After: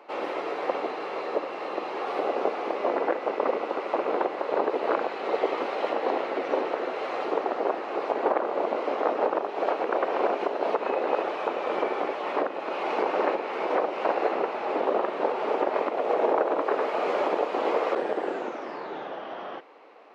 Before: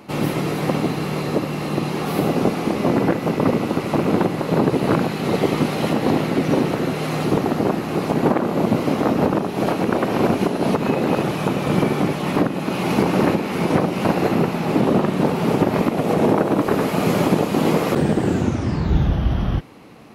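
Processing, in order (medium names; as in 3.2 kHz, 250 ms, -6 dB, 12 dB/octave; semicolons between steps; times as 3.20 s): high-pass 460 Hz 24 dB/octave; tape spacing loss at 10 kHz 31 dB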